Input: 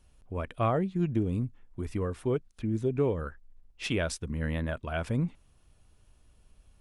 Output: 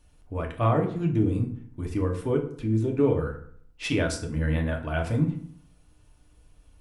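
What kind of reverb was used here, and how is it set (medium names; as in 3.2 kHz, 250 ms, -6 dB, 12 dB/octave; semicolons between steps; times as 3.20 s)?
FDN reverb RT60 0.59 s, low-frequency decay 1.2×, high-frequency decay 0.65×, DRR 1 dB; trim +1 dB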